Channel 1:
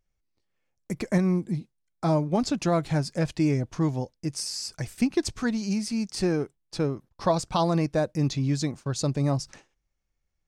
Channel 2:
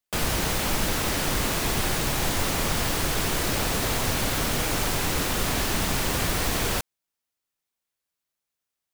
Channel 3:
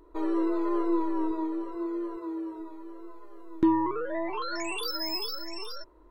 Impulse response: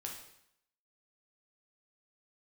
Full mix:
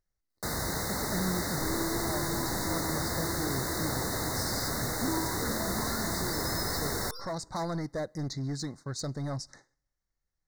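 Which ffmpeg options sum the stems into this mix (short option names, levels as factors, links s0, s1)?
-filter_complex "[0:a]equalizer=f=2700:w=0.36:g=4.5,asoftclip=type=hard:threshold=0.0841,volume=0.447,asplit=2[s0][s1];[s1]volume=0.075[s2];[1:a]highpass=54,adelay=300,volume=0.501[s3];[2:a]adelay=1450,volume=0.562,asplit=2[s4][s5];[s5]volume=0.299[s6];[s0][s4]amix=inputs=2:normalize=0,alimiter=level_in=1.88:limit=0.0631:level=0:latency=1:release=398,volume=0.531,volume=1[s7];[3:a]atrim=start_sample=2205[s8];[s2][s6]amix=inputs=2:normalize=0[s9];[s9][s8]afir=irnorm=-1:irlink=0[s10];[s3][s7][s10]amix=inputs=3:normalize=0,asuperstop=centerf=2800:order=20:qfactor=1.8"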